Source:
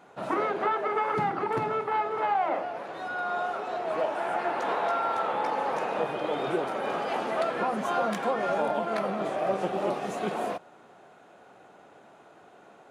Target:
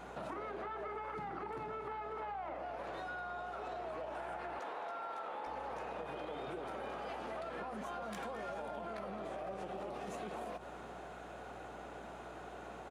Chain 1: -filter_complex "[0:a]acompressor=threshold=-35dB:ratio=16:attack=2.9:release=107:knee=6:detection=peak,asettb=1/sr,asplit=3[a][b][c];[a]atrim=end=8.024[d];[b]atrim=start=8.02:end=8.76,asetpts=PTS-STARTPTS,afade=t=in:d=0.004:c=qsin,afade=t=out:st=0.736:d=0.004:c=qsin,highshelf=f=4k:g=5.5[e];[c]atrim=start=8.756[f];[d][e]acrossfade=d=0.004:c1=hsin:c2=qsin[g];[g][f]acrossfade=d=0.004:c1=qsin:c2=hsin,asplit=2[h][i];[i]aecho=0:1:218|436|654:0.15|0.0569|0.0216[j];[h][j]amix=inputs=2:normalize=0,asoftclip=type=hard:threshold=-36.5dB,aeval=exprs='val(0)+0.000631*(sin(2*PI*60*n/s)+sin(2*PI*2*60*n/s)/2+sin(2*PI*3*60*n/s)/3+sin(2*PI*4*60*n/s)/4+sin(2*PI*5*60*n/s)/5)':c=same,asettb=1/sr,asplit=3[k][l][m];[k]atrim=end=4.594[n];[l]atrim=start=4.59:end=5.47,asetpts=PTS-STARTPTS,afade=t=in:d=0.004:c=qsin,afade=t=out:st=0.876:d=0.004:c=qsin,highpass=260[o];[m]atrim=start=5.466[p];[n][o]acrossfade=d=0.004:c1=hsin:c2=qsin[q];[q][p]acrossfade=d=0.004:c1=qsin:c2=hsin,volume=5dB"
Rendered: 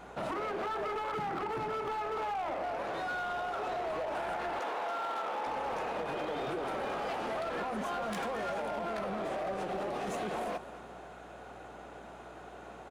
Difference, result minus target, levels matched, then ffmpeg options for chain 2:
compressor: peak gain reduction -9 dB
-filter_complex "[0:a]acompressor=threshold=-44.5dB:ratio=16:attack=2.9:release=107:knee=6:detection=peak,asettb=1/sr,asplit=3[a][b][c];[a]atrim=end=8.024[d];[b]atrim=start=8.02:end=8.76,asetpts=PTS-STARTPTS,afade=t=in:d=0.004:c=qsin,afade=t=out:st=0.736:d=0.004:c=qsin,highshelf=f=4k:g=5.5[e];[c]atrim=start=8.756[f];[d][e]acrossfade=d=0.004:c1=hsin:c2=qsin[g];[g][f]acrossfade=d=0.004:c1=qsin:c2=hsin,asplit=2[h][i];[i]aecho=0:1:218|436|654:0.15|0.0569|0.0216[j];[h][j]amix=inputs=2:normalize=0,asoftclip=type=hard:threshold=-36.5dB,aeval=exprs='val(0)+0.000631*(sin(2*PI*60*n/s)+sin(2*PI*2*60*n/s)/2+sin(2*PI*3*60*n/s)/3+sin(2*PI*4*60*n/s)/4+sin(2*PI*5*60*n/s)/5)':c=same,asettb=1/sr,asplit=3[k][l][m];[k]atrim=end=4.594[n];[l]atrim=start=4.59:end=5.47,asetpts=PTS-STARTPTS,afade=t=in:d=0.004:c=qsin,afade=t=out:st=0.876:d=0.004:c=qsin,highpass=260[o];[m]atrim=start=5.466[p];[n][o]acrossfade=d=0.004:c1=hsin:c2=qsin[q];[q][p]acrossfade=d=0.004:c1=qsin:c2=hsin,volume=5dB"

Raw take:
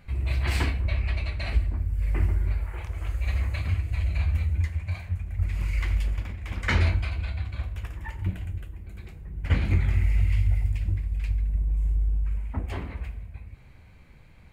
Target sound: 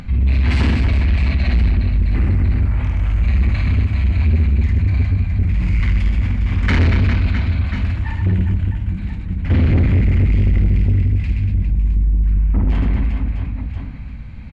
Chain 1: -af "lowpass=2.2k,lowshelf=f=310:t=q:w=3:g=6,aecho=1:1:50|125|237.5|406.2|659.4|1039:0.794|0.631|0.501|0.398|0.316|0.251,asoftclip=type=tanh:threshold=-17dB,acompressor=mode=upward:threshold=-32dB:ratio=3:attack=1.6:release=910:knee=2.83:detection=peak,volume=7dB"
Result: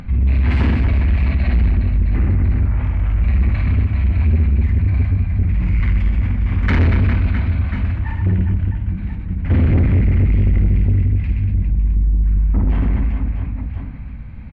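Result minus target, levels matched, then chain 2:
4000 Hz band -6.5 dB
-af "lowpass=4.7k,lowshelf=f=310:t=q:w=3:g=6,aecho=1:1:50|125|237.5|406.2|659.4|1039:0.794|0.631|0.501|0.398|0.316|0.251,asoftclip=type=tanh:threshold=-17dB,acompressor=mode=upward:threshold=-32dB:ratio=3:attack=1.6:release=910:knee=2.83:detection=peak,volume=7dB"

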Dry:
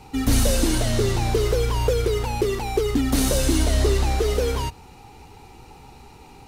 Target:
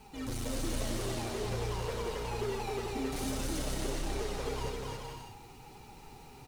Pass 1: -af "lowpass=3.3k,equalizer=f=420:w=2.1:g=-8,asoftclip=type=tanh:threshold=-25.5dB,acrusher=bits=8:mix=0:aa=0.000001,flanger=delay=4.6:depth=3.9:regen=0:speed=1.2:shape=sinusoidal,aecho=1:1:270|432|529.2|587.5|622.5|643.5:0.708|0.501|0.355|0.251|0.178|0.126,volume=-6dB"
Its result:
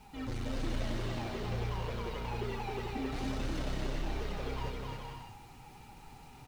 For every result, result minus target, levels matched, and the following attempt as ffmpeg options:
8000 Hz band -10.0 dB; 500 Hz band -2.5 dB
-af "lowpass=12k,equalizer=f=420:w=2.1:g=-8,asoftclip=type=tanh:threshold=-25.5dB,acrusher=bits=8:mix=0:aa=0.000001,flanger=delay=4.6:depth=3.9:regen=0:speed=1.2:shape=sinusoidal,aecho=1:1:270|432|529.2|587.5|622.5|643.5:0.708|0.501|0.355|0.251|0.178|0.126,volume=-6dB"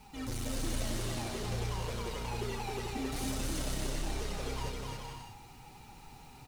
500 Hz band -3.5 dB
-af "lowpass=12k,asoftclip=type=tanh:threshold=-25.5dB,acrusher=bits=8:mix=0:aa=0.000001,flanger=delay=4.6:depth=3.9:regen=0:speed=1.2:shape=sinusoidal,aecho=1:1:270|432|529.2|587.5|622.5|643.5:0.708|0.501|0.355|0.251|0.178|0.126,volume=-6dB"

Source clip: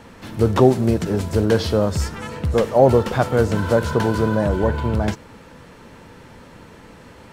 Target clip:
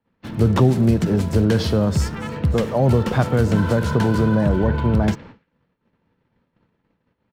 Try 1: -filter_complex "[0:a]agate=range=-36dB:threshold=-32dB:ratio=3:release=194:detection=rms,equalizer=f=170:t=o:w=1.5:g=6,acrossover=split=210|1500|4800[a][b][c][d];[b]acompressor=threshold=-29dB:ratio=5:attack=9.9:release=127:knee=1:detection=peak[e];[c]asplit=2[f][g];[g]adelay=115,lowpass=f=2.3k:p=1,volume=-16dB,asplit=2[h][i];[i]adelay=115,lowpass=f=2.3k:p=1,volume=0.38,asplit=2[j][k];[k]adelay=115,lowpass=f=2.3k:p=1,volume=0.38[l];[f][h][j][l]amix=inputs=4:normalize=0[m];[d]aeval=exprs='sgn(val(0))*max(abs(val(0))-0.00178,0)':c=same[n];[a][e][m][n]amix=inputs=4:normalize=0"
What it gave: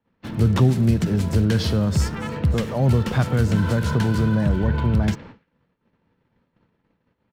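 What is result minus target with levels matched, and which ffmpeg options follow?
compressor: peak gain reduction +7.5 dB
-filter_complex "[0:a]agate=range=-36dB:threshold=-32dB:ratio=3:release=194:detection=rms,equalizer=f=170:t=o:w=1.5:g=6,acrossover=split=210|1500|4800[a][b][c][d];[b]acompressor=threshold=-19.5dB:ratio=5:attack=9.9:release=127:knee=1:detection=peak[e];[c]asplit=2[f][g];[g]adelay=115,lowpass=f=2.3k:p=1,volume=-16dB,asplit=2[h][i];[i]adelay=115,lowpass=f=2.3k:p=1,volume=0.38,asplit=2[j][k];[k]adelay=115,lowpass=f=2.3k:p=1,volume=0.38[l];[f][h][j][l]amix=inputs=4:normalize=0[m];[d]aeval=exprs='sgn(val(0))*max(abs(val(0))-0.00178,0)':c=same[n];[a][e][m][n]amix=inputs=4:normalize=0"

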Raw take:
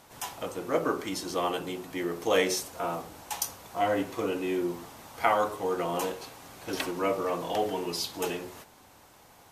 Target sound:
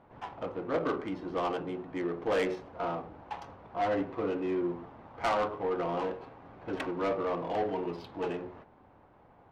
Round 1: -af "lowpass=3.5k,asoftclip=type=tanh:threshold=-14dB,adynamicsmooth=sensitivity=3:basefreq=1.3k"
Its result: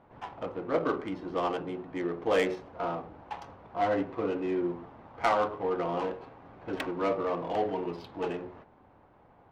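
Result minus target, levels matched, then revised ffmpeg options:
soft clip: distortion -11 dB
-af "lowpass=3.5k,asoftclip=type=tanh:threshold=-22.5dB,adynamicsmooth=sensitivity=3:basefreq=1.3k"

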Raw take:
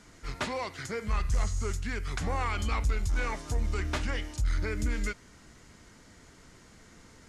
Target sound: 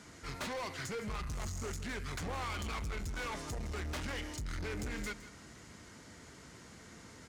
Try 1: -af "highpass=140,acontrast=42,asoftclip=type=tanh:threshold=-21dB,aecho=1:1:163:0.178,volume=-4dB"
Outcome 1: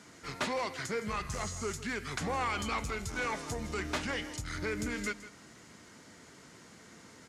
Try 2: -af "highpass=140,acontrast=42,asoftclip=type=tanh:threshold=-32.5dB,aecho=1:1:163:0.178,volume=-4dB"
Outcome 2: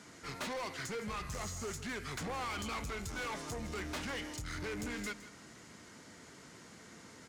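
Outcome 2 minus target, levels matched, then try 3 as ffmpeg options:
125 Hz band -4.0 dB
-af "highpass=67,acontrast=42,asoftclip=type=tanh:threshold=-32.5dB,aecho=1:1:163:0.178,volume=-4dB"

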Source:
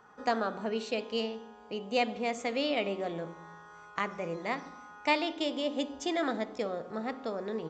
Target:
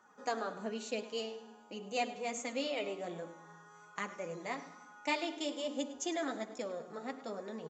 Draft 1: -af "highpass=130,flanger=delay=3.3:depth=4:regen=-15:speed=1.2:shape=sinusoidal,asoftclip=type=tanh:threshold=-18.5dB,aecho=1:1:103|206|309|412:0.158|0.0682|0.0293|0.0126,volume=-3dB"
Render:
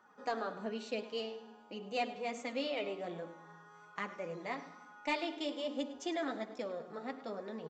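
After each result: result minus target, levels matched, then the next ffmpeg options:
soft clip: distortion +21 dB; 8000 Hz band -10.0 dB
-af "highpass=130,flanger=delay=3.3:depth=4:regen=-15:speed=1.2:shape=sinusoidal,asoftclip=type=tanh:threshold=-7dB,aecho=1:1:103|206|309|412:0.158|0.0682|0.0293|0.0126,volume=-3dB"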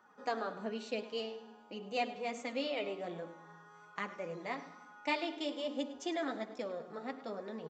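8000 Hz band -10.0 dB
-af "highpass=130,equalizer=f=6.9k:t=o:w=0.39:g=13.5,flanger=delay=3.3:depth=4:regen=-15:speed=1.2:shape=sinusoidal,asoftclip=type=tanh:threshold=-7dB,aecho=1:1:103|206|309|412:0.158|0.0682|0.0293|0.0126,volume=-3dB"

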